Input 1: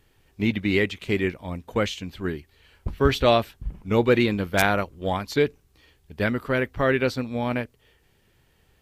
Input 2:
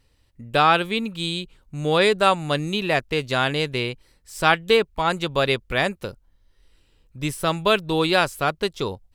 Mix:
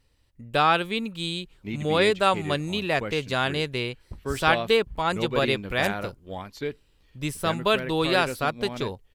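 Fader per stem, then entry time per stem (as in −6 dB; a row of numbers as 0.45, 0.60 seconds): −10.0, −3.5 decibels; 1.25, 0.00 seconds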